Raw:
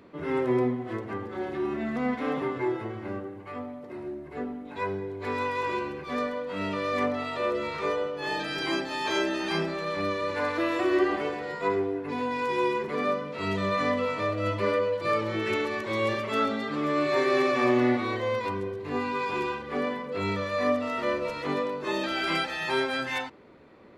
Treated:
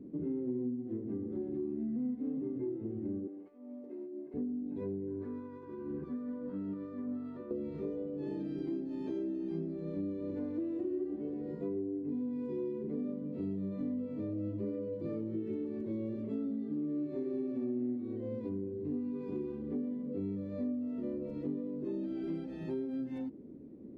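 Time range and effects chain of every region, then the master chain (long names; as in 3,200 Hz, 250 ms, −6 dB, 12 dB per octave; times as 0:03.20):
0:03.27–0:04.34: high-pass filter 590 Hz + double-tracking delay 17 ms −9 dB + compressor whose output falls as the input rises −45 dBFS
0:05.07–0:07.51: flat-topped bell 1,300 Hz +12.5 dB 1.1 octaves + downward compressor 16 to 1, threshold −30 dBFS
whole clip: drawn EQ curve 110 Hz 0 dB, 270 Hz +10 dB, 1,100 Hz −27 dB; downward compressor 5 to 1, threshold −35 dBFS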